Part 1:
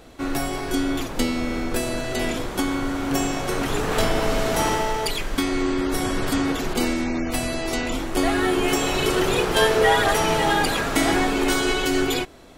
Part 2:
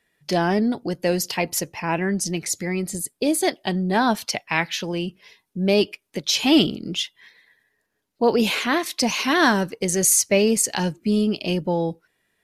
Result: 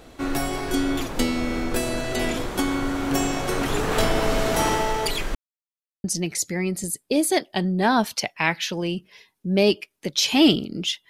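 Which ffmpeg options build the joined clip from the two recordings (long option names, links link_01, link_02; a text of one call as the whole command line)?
ffmpeg -i cue0.wav -i cue1.wav -filter_complex "[0:a]apad=whole_dur=11.09,atrim=end=11.09,asplit=2[link_01][link_02];[link_01]atrim=end=5.35,asetpts=PTS-STARTPTS,afade=type=out:start_time=5.346:duration=0.004:curve=hsin[link_03];[link_02]atrim=start=5.35:end=6.04,asetpts=PTS-STARTPTS,volume=0[link_04];[1:a]atrim=start=2.15:end=7.2,asetpts=PTS-STARTPTS,afade=type=in:duration=0.004:curve=hsin[link_05];[link_03][link_04][link_05]concat=n=3:v=0:a=1" out.wav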